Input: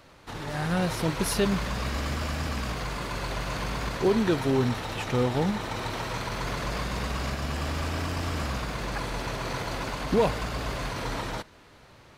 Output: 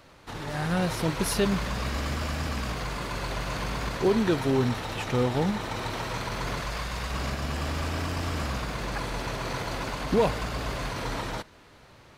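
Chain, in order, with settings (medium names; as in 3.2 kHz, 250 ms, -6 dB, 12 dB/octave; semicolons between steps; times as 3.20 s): 6.61–7.12 s: peaking EQ 260 Hz -7.5 dB 2.1 oct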